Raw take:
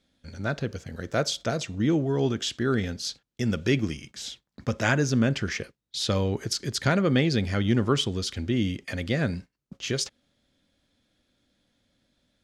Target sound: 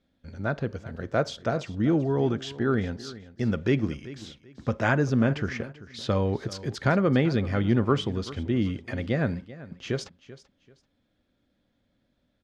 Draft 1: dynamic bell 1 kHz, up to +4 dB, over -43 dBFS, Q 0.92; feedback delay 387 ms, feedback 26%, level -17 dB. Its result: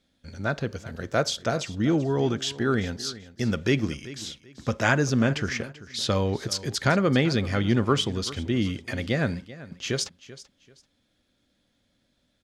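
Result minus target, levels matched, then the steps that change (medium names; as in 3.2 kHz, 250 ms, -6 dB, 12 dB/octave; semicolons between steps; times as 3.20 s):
2 kHz band +2.5 dB
add after dynamic bell: low-pass 1.5 kHz 6 dB/octave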